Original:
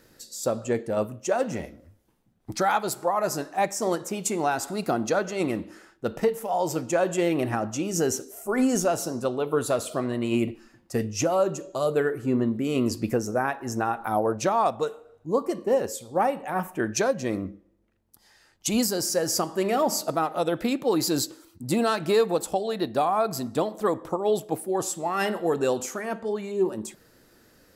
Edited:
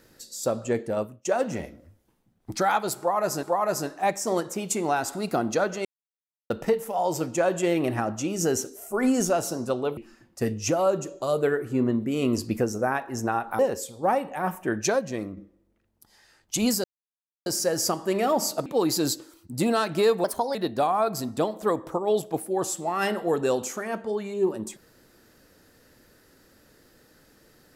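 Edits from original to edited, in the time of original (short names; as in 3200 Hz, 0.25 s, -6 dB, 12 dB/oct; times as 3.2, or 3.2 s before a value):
0.91–1.25 fade out linear, to -24 dB
2.98–3.43 loop, 2 plays
5.4–6.05 mute
9.52–10.5 cut
14.12–15.71 cut
17.04–17.49 fade out, to -7.5 dB
18.96 insert silence 0.62 s
20.16–20.77 cut
22.35–22.73 speed 123%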